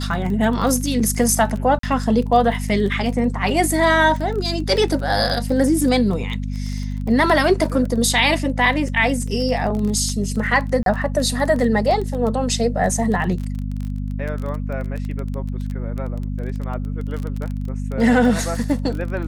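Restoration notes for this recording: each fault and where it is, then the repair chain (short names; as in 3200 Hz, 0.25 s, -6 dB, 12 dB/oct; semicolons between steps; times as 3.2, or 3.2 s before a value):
crackle 21/s -25 dBFS
hum 50 Hz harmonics 5 -25 dBFS
1.79–1.83 gap 43 ms
10.83–10.86 gap 32 ms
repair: de-click; de-hum 50 Hz, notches 5; interpolate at 1.79, 43 ms; interpolate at 10.83, 32 ms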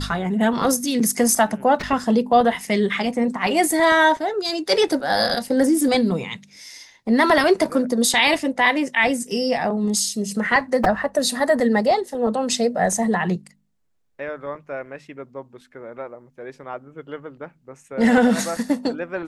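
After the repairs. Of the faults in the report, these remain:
none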